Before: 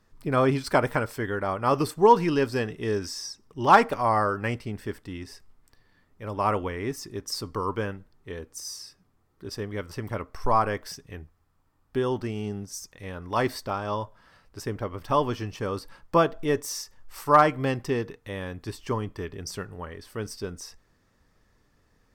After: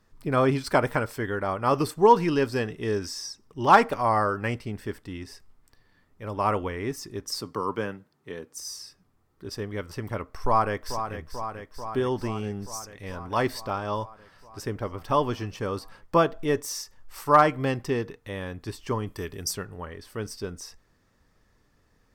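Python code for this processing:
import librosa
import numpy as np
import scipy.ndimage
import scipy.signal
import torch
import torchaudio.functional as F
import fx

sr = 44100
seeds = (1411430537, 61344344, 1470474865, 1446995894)

y = fx.highpass(x, sr, hz=120.0, slope=24, at=(7.4, 8.58))
y = fx.echo_throw(y, sr, start_s=10.39, length_s=0.79, ms=440, feedback_pct=75, wet_db=-9.0)
y = fx.peak_eq(y, sr, hz=13000.0, db=14.0, octaves=1.7, at=(19.06, 19.52), fade=0.02)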